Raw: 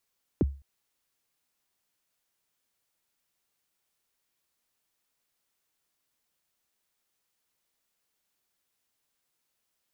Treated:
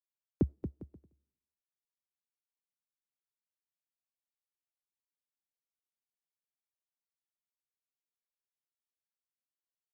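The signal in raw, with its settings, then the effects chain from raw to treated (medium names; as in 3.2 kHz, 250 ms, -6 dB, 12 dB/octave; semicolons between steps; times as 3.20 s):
kick drum length 0.21 s, from 440 Hz, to 69 Hz, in 27 ms, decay 0.34 s, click off, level -17 dB
on a send: bouncing-ball echo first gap 230 ms, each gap 0.75×, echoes 5; on the sum: algorithmic reverb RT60 0.81 s, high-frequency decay 0.9×, pre-delay 45 ms, DRR 15.5 dB; upward expansion 2.5:1, over -43 dBFS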